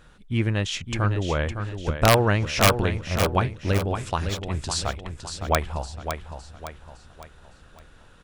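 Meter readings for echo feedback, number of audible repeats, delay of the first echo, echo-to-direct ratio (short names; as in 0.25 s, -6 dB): 42%, 4, 0.56 s, -7.0 dB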